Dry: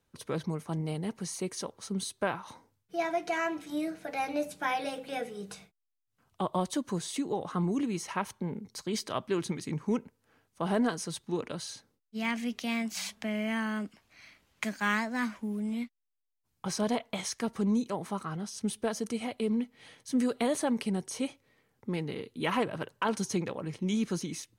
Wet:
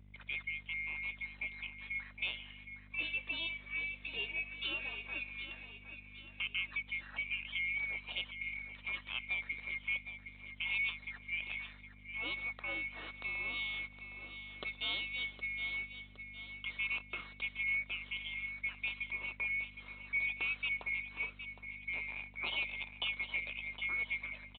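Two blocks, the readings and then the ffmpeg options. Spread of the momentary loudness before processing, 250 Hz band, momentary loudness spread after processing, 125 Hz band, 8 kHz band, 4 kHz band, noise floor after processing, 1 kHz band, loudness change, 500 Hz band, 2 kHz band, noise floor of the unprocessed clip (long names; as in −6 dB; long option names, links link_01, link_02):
8 LU, −27.0 dB, 10 LU, −17.5 dB, below −40 dB, +0.5 dB, −56 dBFS, −19.0 dB, −4.5 dB, −24.0 dB, +4.0 dB, −80 dBFS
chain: -filter_complex "[0:a]afftfilt=real='real(if(lt(b,920),b+92*(1-2*mod(floor(b/92),2)),b),0)':imag='imag(if(lt(b,920),b+92*(1-2*mod(floor(b/92),2)),b),0)':win_size=2048:overlap=0.75,highpass=390,asplit=2[link_01][link_02];[link_02]acompressor=threshold=-41dB:ratio=16,volume=0dB[link_03];[link_01][link_03]amix=inputs=2:normalize=0,aeval=exprs='val(0)+0.00562*(sin(2*PI*50*n/s)+sin(2*PI*2*50*n/s)/2+sin(2*PI*3*50*n/s)/3+sin(2*PI*4*50*n/s)/4+sin(2*PI*5*50*n/s)/5)':channel_layout=same,aresample=8000,aeval=exprs='sgn(val(0))*max(abs(val(0))-0.0015,0)':channel_layout=same,aresample=44100,aecho=1:1:764|1528|2292|3056|3820:0.299|0.14|0.0659|0.031|0.0146,volume=-9dB"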